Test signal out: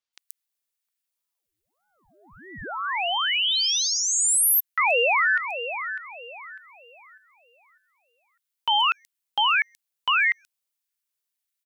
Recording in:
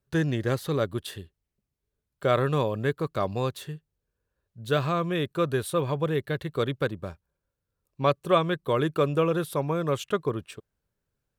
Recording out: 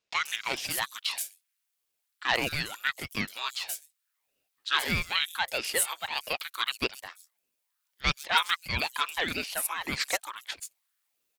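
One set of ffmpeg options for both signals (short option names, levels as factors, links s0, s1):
-filter_complex "[0:a]acontrast=52,asoftclip=type=hard:threshold=0.335,highpass=f=1200:w=0.5412,highpass=f=1200:w=1.3066,highshelf=f=2400:g=10,acrossover=split=5900[s0][s1];[s1]adelay=130[s2];[s0][s2]amix=inputs=2:normalize=0,aeval=exprs='val(0)*sin(2*PI*630*n/s+630*0.85/1.6*sin(2*PI*1.6*n/s))':c=same"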